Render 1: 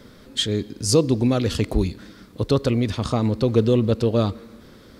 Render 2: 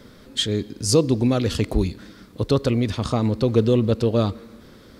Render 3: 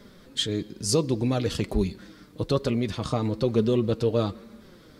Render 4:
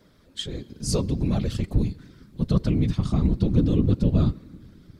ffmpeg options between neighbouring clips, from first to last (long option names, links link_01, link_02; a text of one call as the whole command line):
ffmpeg -i in.wav -af anull out.wav
ffmpeg -i in.wav -af "flanger=delay=4.9:depth=1.8:regen=44:speed=1.1:shape=sinusoidal" out.wav
ffmpeg -i in.wav -af "asubboost=boost=10:cutoff=170,dynaudnorm=framelen=210:gausssize=7:maxgain=11.5dB,afftfilt=real='hypot(re,im)*cos(2*PI*random(0))':imag='hypot(re,im)*sin(2*PI*random(1))':win_size=512:overlap=0.75,volume=-1.5dB" out.wav